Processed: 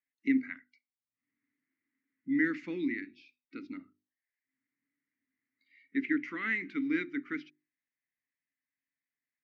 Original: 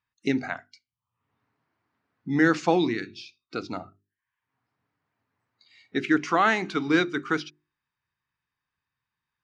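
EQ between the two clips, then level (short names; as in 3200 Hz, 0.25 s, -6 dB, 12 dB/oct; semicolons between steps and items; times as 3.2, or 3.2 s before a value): double band-pass 740 Hz, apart 2.9 oct; 0.0 dB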